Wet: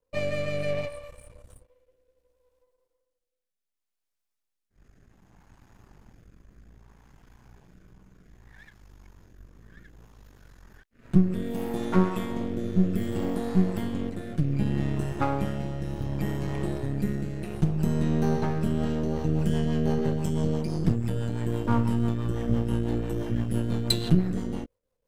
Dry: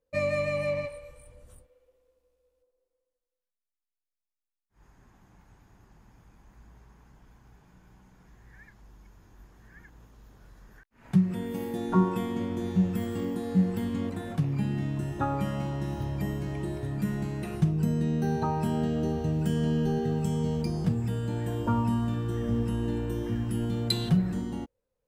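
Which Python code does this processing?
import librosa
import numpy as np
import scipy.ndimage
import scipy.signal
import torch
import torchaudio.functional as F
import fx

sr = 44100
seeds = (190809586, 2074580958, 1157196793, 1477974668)

y = np.where(x < 0.0, 10.0 ** (-12.0 / 20.0) * x, x)
y = fx.rotary_switch(y, sr, hz=0.65, then_hz=6.0, switch_at_s=18.51)
y = y * librosa.db_to_amplitude(6.5)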